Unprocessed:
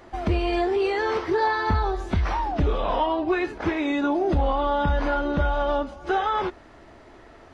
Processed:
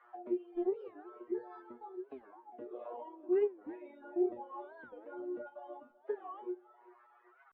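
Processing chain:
high-shelf EQ 3,800 Hz +7 dB
envelope filter 350–1,400 Hz, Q 3.1, down, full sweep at −26.5 dBFS
three-way crossover with the lows and the highs turned down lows −21 dB, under 330 Hz, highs −23 dB, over 2,900 Hz
hum removal 93.94 Hz, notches 4
output level in coarse steps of 10 dB
tuned comb filter 120 Hz, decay 0.36 s, harmonics all, mix 100%
reverb reduction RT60 1.7 s
feedback echo with a high-pass in the loop 388 ms, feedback 61%, high-pass 440 Hz, level −18 dB
wow of a warped record 45 rpm, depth 250 cents
level +9.5 dB

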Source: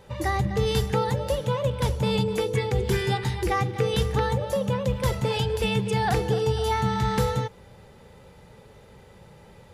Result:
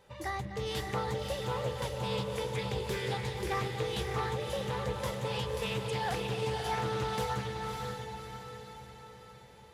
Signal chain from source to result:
low-shelf EQ 410 Hz −7.5 dB
on a send: feedback delay with all-pass diffusion 597 ms, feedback 50%, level −3 dB
on the sum: highs frequency-modulated by the lows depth 0.23 ms
level −8 dB

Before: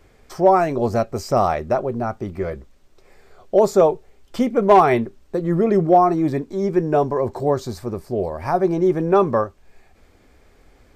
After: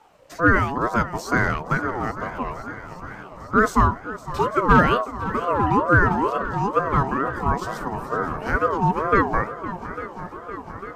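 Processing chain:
feedback echo with a long and a short gap by turns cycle 849 ms, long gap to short 1.5 to 1, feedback 67%, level −15 dB
ring modulator whose carrier an LFO sweeps 700 Hz, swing 25%, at 2.2 Hz

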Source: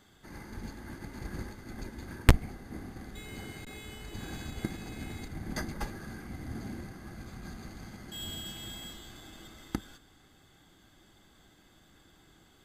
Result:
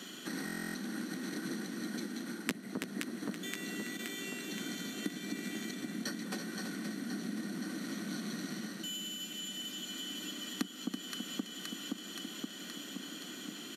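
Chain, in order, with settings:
in parallel at −3.5 dB: hard clipping −19.5 dBFS, distortion −4 dB
on the sum: Butterworth high-pass 220 Hz 36 dB per octave
delay that swaps between a low-pass and a high-pass 240 ms, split 1,200 Hz, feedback 80%, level −8.5 dB
wrong playback speed 48 kHz file played as 44.1 kHz
parametric band 830 Hz −14 dB 1.6 octaves
on a send: single-tap delay 329 ms −11.5 dB
on the sum: downward compressor 2 to 1, threshold −54 dBFS, peak gain reduction 17 dB
high-shelf EQ 10,000 Hz −5 dB
speech leveller within 4 dB 0.5 s
buffer that repeats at 0:00.45, samples 1,024, times 12
level +11.5 dB

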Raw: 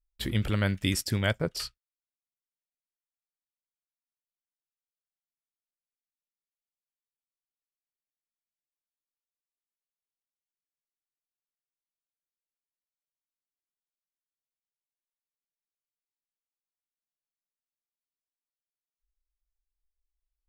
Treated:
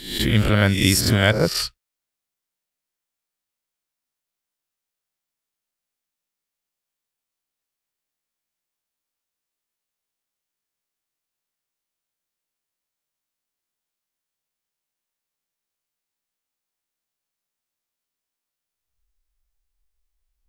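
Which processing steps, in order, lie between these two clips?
peak hold with a rise ahead of every peak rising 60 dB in 0.63 s
level +8.5 dB

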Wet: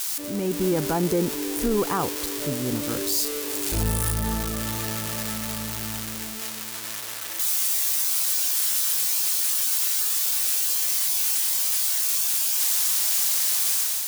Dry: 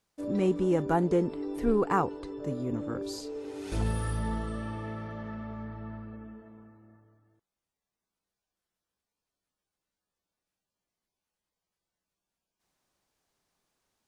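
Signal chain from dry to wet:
spike at every zero crossing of −20 dBFS
brickwall limiter −21 dBFS, peak gain reduction 7.5 dB
automatic gain control gain up to 6 dB

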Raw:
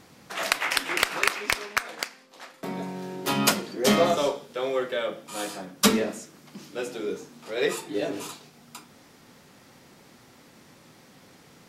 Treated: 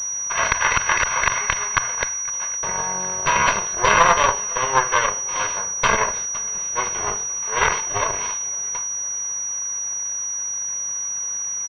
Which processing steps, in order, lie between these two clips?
lower of the sound and its delayed copy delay 1.9 ms
hum removal 61.59 Hz, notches 2
tube saturation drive 13 dB, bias 0.35
repeating echo 509 ms, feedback 46%, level −22.5 dB
harmonic generator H 3 −12 dB, 4 −12 dB, 5 −23 dB, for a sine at −10 dBFS
formants moved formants −2 semitones
low shelf with overshoot 650 Hz −10.5 dB, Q 1.5
boost into a limiter +18 dB
switching amplifier with a slow clock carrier 5,800 Hz
level −1 dB

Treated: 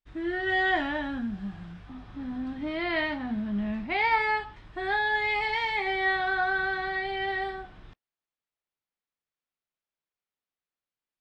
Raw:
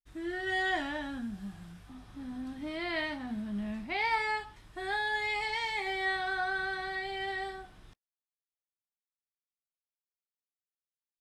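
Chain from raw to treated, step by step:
low-pass filter 3,300 Hz 12 dB per octave
level +6 dB

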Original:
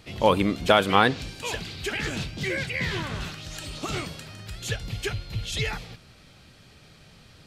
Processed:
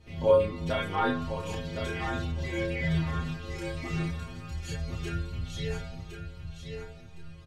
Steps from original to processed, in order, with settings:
spectral tilt −2.5 dB per octave
in parallel at +1 dB: downward compressor, threshold −27 dBFS, peak gain reduction 14.5 dB
on the sum: stiff-string resonator 80 Hz, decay 0.79 s, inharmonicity 0.008
on a send: repeating echo 1,062 ms, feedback 26%, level −7 dB
on the sum: four-comb reverb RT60 2.9 s, combs from 31 ms, DRR 16 dB
multi-voice chorus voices 4, 0.38 Hz, delay 30 ms, depth 1.5 ms
level +5 dB

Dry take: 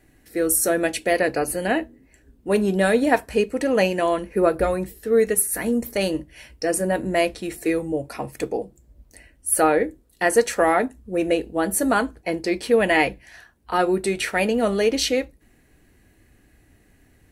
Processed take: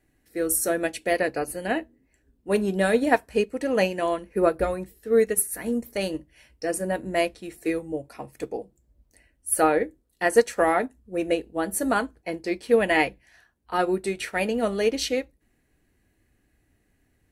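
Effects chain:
expander for the loud parts 1.5 to 1, over −33 dBFS

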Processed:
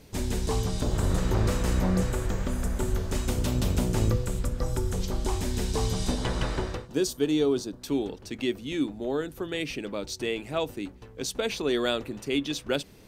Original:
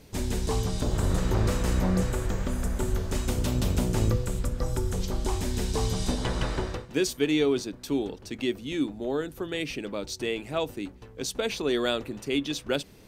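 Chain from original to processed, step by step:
0:06.87–0:07.82: parametric band 2,200 Hz −11 dB 0.79 octaves

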